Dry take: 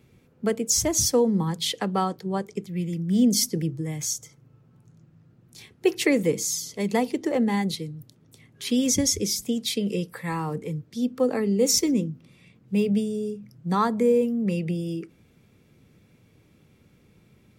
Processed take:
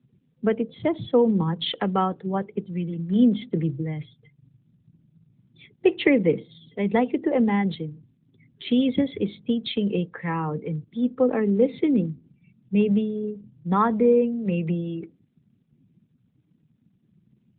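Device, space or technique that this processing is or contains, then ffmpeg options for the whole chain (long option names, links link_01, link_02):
mobile call with aggressive noise cancelling: -af "highpass=frequency=110:width=0.5412,highpass=frequency=110:width=1.3066,afftdn=noise_reduction=34:noise_floor=-47,volume=2.5dB" -ar 8000 -c:a libopencore_amrnb -b:a 12200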